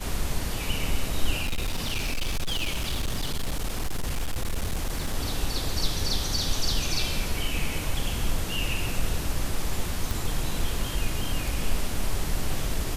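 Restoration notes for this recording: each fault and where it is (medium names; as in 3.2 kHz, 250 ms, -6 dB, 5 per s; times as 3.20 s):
1.42–5.15 s: clipped -23 dBFS
10.11 s: pop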